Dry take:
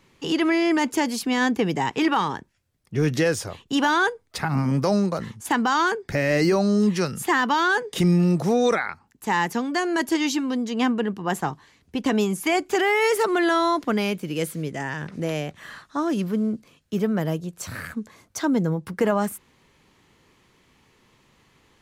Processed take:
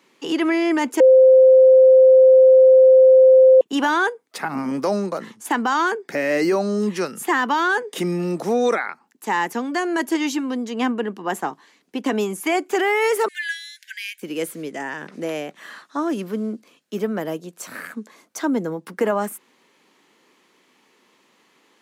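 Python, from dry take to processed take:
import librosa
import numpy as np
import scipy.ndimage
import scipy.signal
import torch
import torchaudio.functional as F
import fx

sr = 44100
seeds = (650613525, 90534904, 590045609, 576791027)

y = fx.brickwall_highpass(x, sr, low_hz=1500.0, at=(13.28, 14.22))
y = fx.edit(y, sr, fx.bleep(start_s=1.0, length_s=2.61, hz=521.0, db=-8.5), tone=tone)
y = scipy.signal.sosfilt(scipy.signal.butter(4, 230.0, 'highpass', fs=sr, output='sos'), y)
y = fx.dynamic_eq(y, sr, hz=4500.0, q=1.2, threshold_db=-45.0, ratio=4.0, max_db=-5)
y = y * librosa.db_to_amplitude(1.5)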